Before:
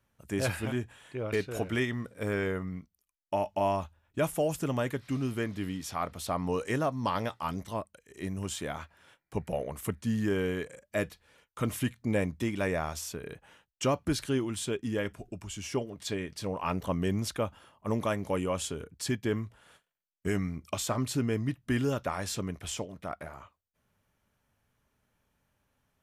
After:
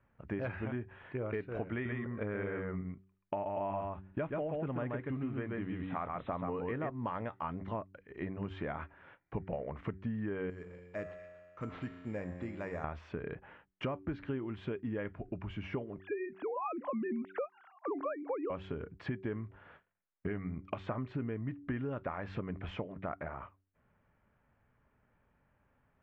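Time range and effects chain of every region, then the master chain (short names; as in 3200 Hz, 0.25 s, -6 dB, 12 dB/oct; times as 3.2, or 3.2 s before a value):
1.72–6.9 brick-wall FIR low-pass 4100 Hz + echo 0.131 s -3 dB
10.5–12.84 resonator 89 Hz, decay 1.9 s, mix 80% + delay with a stepping band-pass 0.12 s, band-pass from 1000 Hz, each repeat 1.4 oct, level -11 dB + careless resampling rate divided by 6×, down none, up zero stuff
15.99–18.5 sine-wave speech + LPF 2600 Hz
whole clip: LPF 2200 Hz 24 dB/oct; de-hum 95.37 Hz, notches 4; compressor 6:1, threshold -38 dBFS; gain +3.5 dB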